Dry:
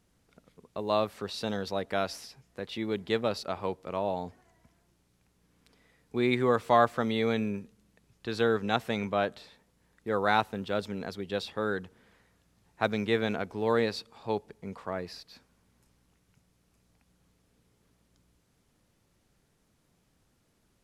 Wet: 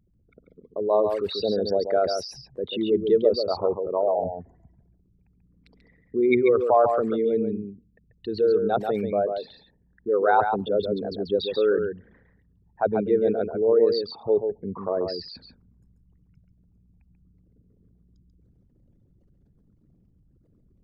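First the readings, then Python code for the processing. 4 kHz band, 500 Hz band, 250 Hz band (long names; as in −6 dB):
+2.5 dB, +9.5 dB, +4.5 dB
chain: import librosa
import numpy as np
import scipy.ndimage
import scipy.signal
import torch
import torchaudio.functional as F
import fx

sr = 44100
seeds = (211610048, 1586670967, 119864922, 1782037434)

p1 = fx.envelope_sharpen(x, sr, power=3.0)
p2 = fx.dynamic_eq(p1, sr, hz=420.0, q=6.1, threshold_db=-42.0, ratio=4.0, max_db=4)
p3 = fx.rider(p2, sr, range_db=4, speed_s=2.0)
p4 = p3 + fx.echo_single(p3, sr, ms=138, db=-6.0, dry=0)
y = p4 * librosa.db_to_amplitude(5.0)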